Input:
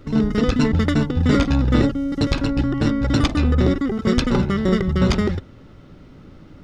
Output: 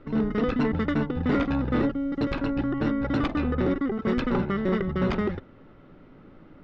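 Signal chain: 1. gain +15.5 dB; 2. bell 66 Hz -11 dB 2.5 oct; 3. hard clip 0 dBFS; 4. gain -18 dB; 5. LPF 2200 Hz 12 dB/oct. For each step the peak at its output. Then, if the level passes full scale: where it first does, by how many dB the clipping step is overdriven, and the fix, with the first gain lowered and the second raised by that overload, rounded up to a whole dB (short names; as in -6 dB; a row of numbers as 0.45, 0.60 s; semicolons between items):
+10.5, +8.5, 0.0, -18.0, -17.5 dBFS; step 1, 8.5 dB; step 1 +6.5 dB, step 4 -9 dB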